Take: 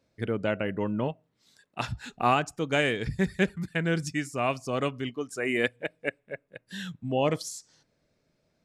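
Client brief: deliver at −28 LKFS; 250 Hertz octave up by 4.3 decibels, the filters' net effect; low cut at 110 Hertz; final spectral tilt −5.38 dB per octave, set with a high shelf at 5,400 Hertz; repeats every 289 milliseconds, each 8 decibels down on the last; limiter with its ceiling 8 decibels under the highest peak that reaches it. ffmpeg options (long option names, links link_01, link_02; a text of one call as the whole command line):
ffmpeg -i in.wav -af "highpass=110,equalizer=frequency=250:width_type=o:gain=6,highshelf=frequency=5400:gain=-7,alimiter=limit=-16dB:level=0:latency=1,aecho=1:1:289|578|867|1156|1445:0.398|0.159|0.0637|0.0255|0.0102,volume=2dB" out.wav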